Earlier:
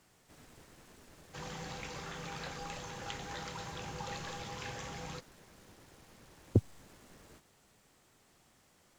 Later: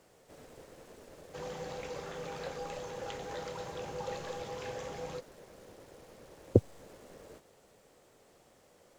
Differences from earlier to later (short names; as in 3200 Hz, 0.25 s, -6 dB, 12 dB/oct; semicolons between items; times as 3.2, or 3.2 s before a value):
background -3.5 dB; master: add bell 510 Hz +13 dB 1 oct